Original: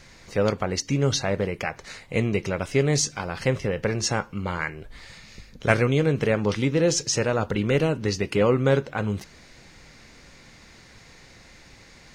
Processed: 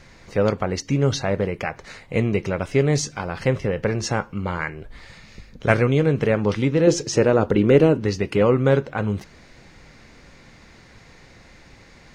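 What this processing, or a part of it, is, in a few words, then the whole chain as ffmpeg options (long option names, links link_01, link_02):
behind a face mask: -filter_complex "[0:a]highshelf=frequency=3100:gain=-8,asettb=1/sr,asplit=3[link_01][link_02][link_03];[link_01]atrim=end=6.874[link_04];[link_02]atrim=start=6.87:end=8,asetpts=PTS-STARTPTS,afade=type=in:duration=0.004:curve=qsin,afade=type=out:start_time=1.126:duration=0.004:curve=qsin,equalizer=frequency=350:width_type=o:width=1.4:gain=7.5[link_05];[link_03]atrim=start=7.996[link_06];[link_04][link_05]acrossfade=duration=0.004:curve1=hsin:curve2=qsin[link_07];[link_07][link_06]acrossfade=duration=0.004:curve1=qsin:curve2=hsin,volume=3dB"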